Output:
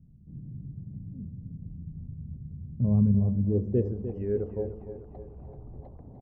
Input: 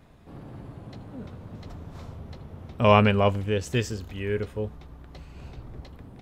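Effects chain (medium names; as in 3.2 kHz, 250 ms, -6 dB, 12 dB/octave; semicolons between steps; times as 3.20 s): resonances exaggerated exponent 1.5; low-pass sweep 170 Hz -> 760 Hz, 3.28–3.94 s; de-hum 54.35 Hz, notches 22; on a send: feedback delay 301 ms, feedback 52%, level -10.5 dB; on the sum: trim -2.5 dB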